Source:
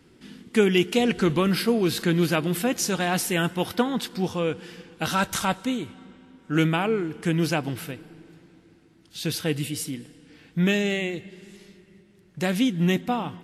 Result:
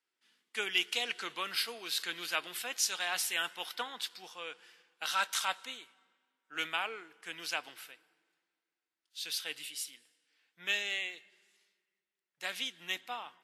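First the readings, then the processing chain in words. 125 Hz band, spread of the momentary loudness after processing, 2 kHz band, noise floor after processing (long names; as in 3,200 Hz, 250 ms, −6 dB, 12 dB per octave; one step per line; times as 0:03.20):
−39.0 dB, 14 LU, −6.0 dB, below −85 dBFS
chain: high-pass filter 1,000 Hz 12 dB per octave
dynamic equaliser 3,600 Hz, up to +5 dB, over −43 dBFS, Q 0.96
multiband upward and downward expander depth 40%
level −8 dB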